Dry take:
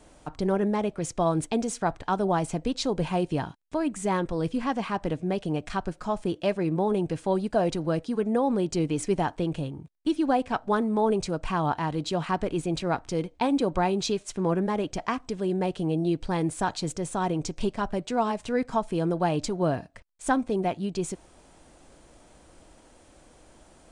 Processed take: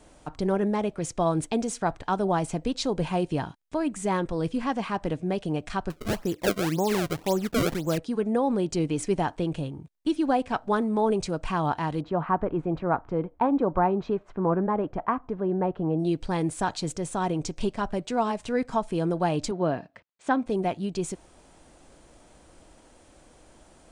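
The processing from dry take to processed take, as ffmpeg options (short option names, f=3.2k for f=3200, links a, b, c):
-filter_complex "[0:a]asettb=1/sr,asplit=3[a][b][c];[a]atrim=end=5.904[d];[b]atrim=start=5.9:end=7.98,asetpts=PTS-STARTPTS,afade=t=in:d=0.004:c=qsin,afade=t=out:st=2.076:d=0.004:c=qsin,acrusher=samples=29:mix=1:aa=0.000001:lfo=1:lforange=46.4:lforate=1.9[e];[c]atrim=start=7.976[f];[d][e]acrossfade=d=0.004:c1=hsin:c2=qsin[g];[g][f]acrossfade=d=0.004:c1=qsin:c2=hsin,asplit=3[h][i][j];[h]afade=t=out:st=12:d=0.02[k];[i]lowpass=f=1.2k:t=q:w=1.5,afade=t=in:st=12:d=0.02,afade=t=out:st=15.98:d=0.02[l];[j]afade=t=in:st=15.98:d=0.02[m];[k][l][m]amix=inputs=3:normalize=0,asettb=1/sr,asplit=3[n][o][p];[n]atrim=end=19.514[q];[o]atrim=start=19.51:end=20.46,asetpts=PTS-STARTPTS,afade=t=in:d=0.004:c=qsin,afade=t=out:st=0.946:d=0.004:c=qsin,highpass=150,lowpass=3.8k[r];[p]atrim=start=20.456[s];[q][r]acrossfade=d=0.004:c1=hsin:c2=qsin[t];[t][s]acrossfade=d=0.004:c1=qsin:c2=hsin"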